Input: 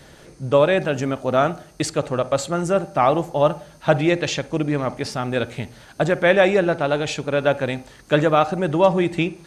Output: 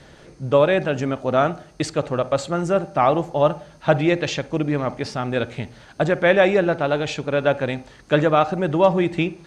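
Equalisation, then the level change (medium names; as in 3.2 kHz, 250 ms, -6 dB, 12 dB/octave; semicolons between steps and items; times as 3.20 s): distance through air 60 m; 0.0 dB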